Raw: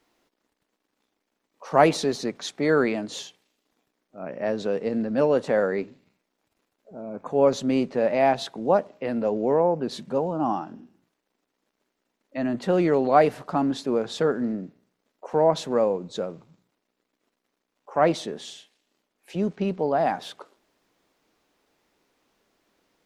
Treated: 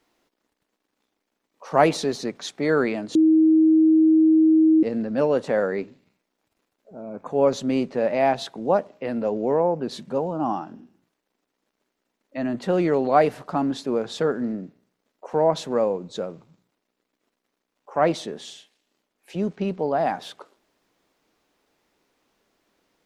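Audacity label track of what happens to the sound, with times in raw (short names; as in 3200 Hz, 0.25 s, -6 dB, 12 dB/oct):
3.150000	4.830000	bleep 317 Hz -12.5 dBFS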